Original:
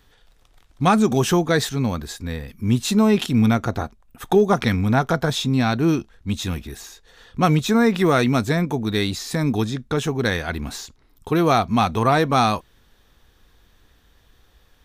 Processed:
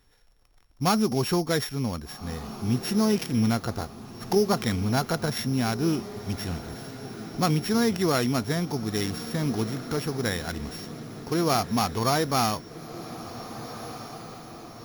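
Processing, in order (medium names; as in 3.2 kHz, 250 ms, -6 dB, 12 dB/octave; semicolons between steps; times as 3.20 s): sorted samples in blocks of 8 samples; echo that smears into a reverb 1618 ms, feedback 58%, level -13.5 dB; trim -6.5 dB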